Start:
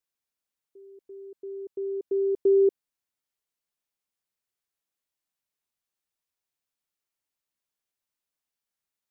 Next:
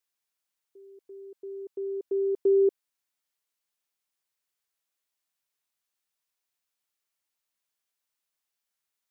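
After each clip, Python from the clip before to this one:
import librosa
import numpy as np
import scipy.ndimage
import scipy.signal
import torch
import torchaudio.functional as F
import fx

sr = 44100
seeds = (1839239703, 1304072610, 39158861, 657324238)

y = fx.low_shelf(x, sr, hz=480.0, db=-8.5)
y = y * 10.0 ** (3.5 / 20.0)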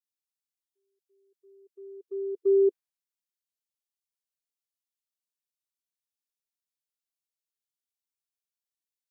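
y = fx.hpss(x, sr, part='percussive', gain_db=-7)
y = fx.band_widen(y, sr, depth_pct=100)
y = y * 10.0 ** (-6.5 / 20.0)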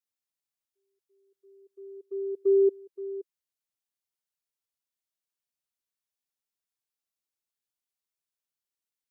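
y = x + 10.0 ** (-15.0 / 20.0) * np.pad(x, (int(523 * sr / 1000.0), 0))[:len(x)]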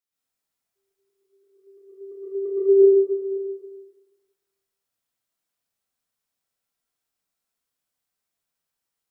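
y = fx.rev_plate(x, sr, seeds[0], rt60_s=1.3, hf_ratio=0.45, predelay_ms=105, drr_db=-9.0)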